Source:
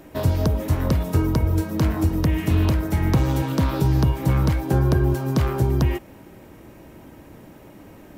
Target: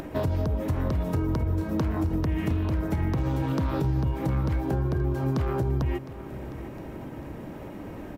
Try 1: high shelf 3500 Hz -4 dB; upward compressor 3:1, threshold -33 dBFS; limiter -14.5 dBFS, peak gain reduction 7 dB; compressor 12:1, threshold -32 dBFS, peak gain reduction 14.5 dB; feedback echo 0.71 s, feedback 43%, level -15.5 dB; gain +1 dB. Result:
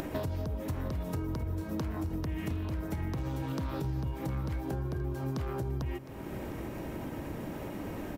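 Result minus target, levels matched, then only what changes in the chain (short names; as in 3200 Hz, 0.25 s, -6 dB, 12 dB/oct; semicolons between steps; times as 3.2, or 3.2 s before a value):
compressor: peak gain reduction +8 dB; 8000 Hz band +7.5 dB
change: high shelf 3500 Hz -11.5 dB; change: compressor 12:1, threshold -23 dBFS, peak gain reduction 6 dB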